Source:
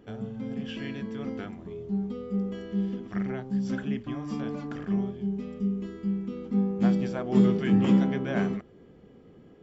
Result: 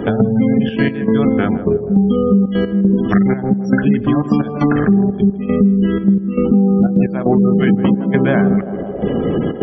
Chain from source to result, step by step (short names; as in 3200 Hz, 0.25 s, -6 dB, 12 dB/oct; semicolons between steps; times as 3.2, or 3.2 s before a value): spectral gate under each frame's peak -30 dB strong; in parallel at +2 dB: compressor 6:1, threshold -37 dBFS, peak gain reduction 20 dB; on the sum: step gate "..xxxxx.x" 153 bpm -12 dB; on a send: narrowing echo 0.159 s, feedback 65%, band-pass 510 Hz, level -13.5 dB; on the sum: maximiser +17 dB; three-band squash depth 100%; gain -3 dB